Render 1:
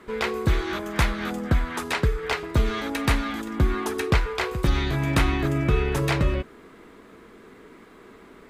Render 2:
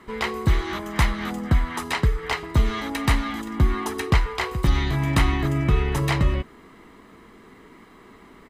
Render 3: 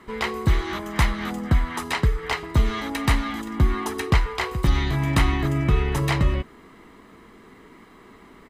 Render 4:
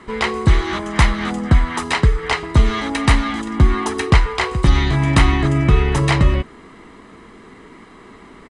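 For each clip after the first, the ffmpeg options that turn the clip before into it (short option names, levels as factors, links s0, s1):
-af "aecho=1:1:1:0.37"
-af anull
-af "aresample=22050,aresample=44100,volume=2.11"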